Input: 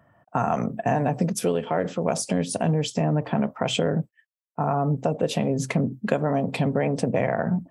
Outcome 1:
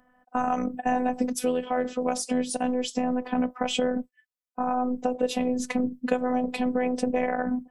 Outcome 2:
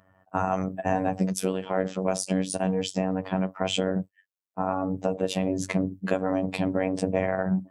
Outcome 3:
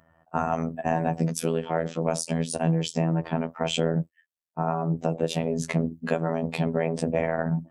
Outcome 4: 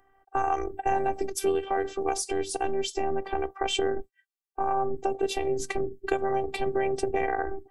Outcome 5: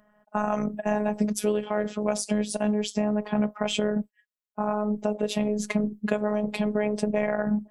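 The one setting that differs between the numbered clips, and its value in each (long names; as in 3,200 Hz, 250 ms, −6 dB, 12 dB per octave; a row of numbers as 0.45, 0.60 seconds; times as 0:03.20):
phases set to zero, frequency: 250, 94, 82, 390, 210 Hertz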